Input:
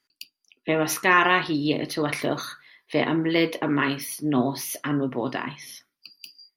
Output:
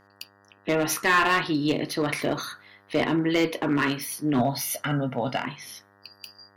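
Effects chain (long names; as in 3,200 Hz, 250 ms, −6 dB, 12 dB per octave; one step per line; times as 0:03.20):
0:04.39–0:05.45: comb filter 1.4 ms, depth 83%
asymmetric clip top −16.5 dBFS
hum with harmonics 100 Hz, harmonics 19, −59 dBFS −1 dB per octave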